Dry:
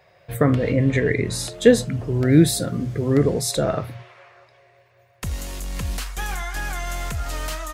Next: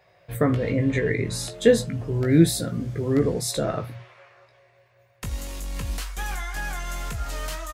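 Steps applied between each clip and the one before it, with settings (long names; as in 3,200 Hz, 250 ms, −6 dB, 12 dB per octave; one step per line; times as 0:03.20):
double-tracking delay 18 ms −7 dB
level −4 dB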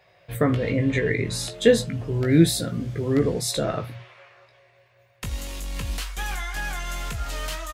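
parametric band 3,100 Hz +4.5 dB 1.2 octaves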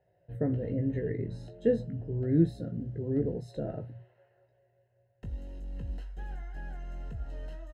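moving average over 38 samples
level −7 dB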